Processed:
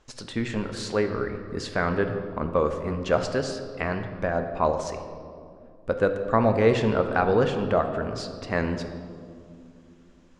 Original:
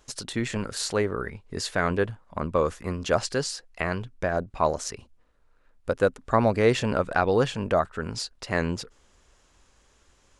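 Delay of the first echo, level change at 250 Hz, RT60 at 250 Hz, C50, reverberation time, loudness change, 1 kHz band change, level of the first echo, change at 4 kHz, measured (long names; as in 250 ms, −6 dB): no echo audible, +2.0 dB, 4.0 s, 8.0 dB, 2.5 s, +1.0 dB, +0.5 dB, no echo audible, −4.0 dB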